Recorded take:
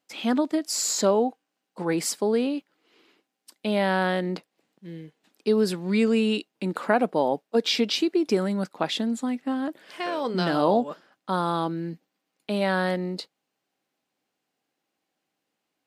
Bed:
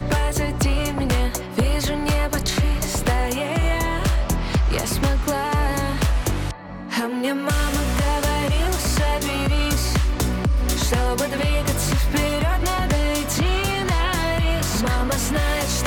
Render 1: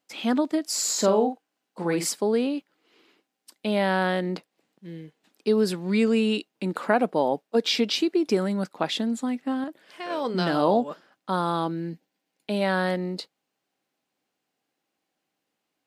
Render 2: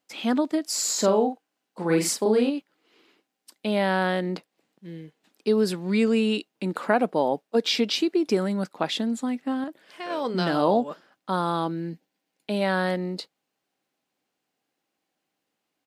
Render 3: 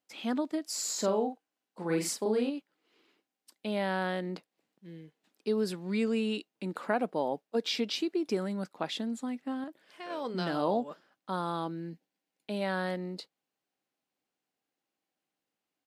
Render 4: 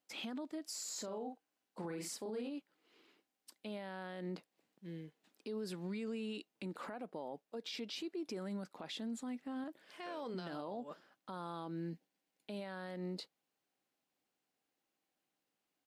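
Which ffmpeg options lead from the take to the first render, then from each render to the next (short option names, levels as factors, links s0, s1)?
-filter_complex "[0:a]asettb=1/sr,asplit=3[s0][s1][s2];[s0]atrim=end=0.954[s3];[s1]atrim=start=0.95:end=2.09,asetpts=PTS-STARTPTS,afade=t=in:d=0.004:c=qsin,afade=t=out:st=1.136:d=0.004:c=qsin,asplit=2[s4][s5];[s5]adelay=47,volume=0.398[s6];[s4][s6]amix=inputs=2:normalize=0,atrim=end_sample=50274[s7];[s2]atrim=start=2.086[s8];[s3][s7]acrossfade=d=0.004:c1=hsin:c2=qsin[s9];[s9][s8]acrossfade=d=0.004:c1=qsin:c2=hsin,asettb=1/sr,asplit=3[s10][s11][s12];[s10]atrim=end=11.714[s13];[s11]atrim=start=11.71:end=12.6,asetpts=PTS-STARTPTS,afade=t=in:d=0.004:c=qsin,afade=t=out:st=0.886:d=0.004:c=qsin,bandreject=f=1200:w=5.5[s14];[s12]atrim=start=12.596[s15];[s13][s14]acrossfade=d=0.004:c1=hsin:c2=qsin[s16];[s16][s15]acrossfade=d=0.004:c1=qsin:c2=hsin,asplit=3[s17][s18][s19];[s17]atrim=end=9.642[s20];[s18]atrim=start=9.638:end=10.102,asetpts=PTS-STARTPTS,volume=0.562[s21];[s19]atrim=start=10.098[s22];[s20][s21]acrossfade=d=0.004:c1=hsin:c2=hsin[s23];[s23][s22]acrossfade=d=0.004:c1=hsin:c2=hsin"
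-filter_complex "[0:a]asplit=3[s0][s1][s2];[s0]afade=t=out:st=1.89:d=0.02[s3];[s1]asplit=2[s4][s5];[s5]adelay=37,volume=0.794[s6];[s4][s6]amix=inputs=2:normalize=0,afade=t=in:st=1.89:d=0.02,afade=t=out:st=2.49:d=0.02[s7];[s2]afade=t=in:st=2.49:d=0.02[s8];[s3][s7][s8]amix=inputs=3:normalize=0"
-af "volume=0.398"
-af "acompressor=threshold=0.0158:ratio=10,alimiter=level_in=3.55:limit=0.0631:level=0:latency=1:release=32,volume=0.282"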